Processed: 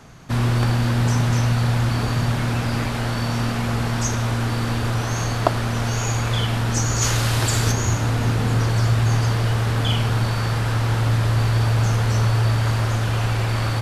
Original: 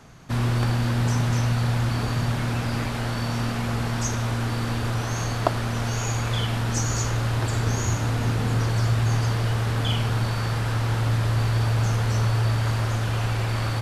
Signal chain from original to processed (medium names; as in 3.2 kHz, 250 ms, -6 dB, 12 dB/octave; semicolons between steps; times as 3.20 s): 7.01–7.71 s: treble shelf 2.2 kHz -> 3.3 kHz +10.5 dB; trim +3.5 dB